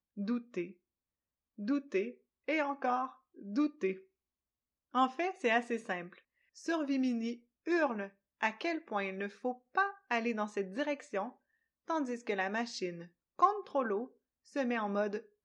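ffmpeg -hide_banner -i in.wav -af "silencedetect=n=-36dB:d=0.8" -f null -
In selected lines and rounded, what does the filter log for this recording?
silence_start: 0.64
silence_end: 1.62 | silence_duration: 0.97
silence_start: 3.93
silence_end: 4.95 | silence_duration: 1.02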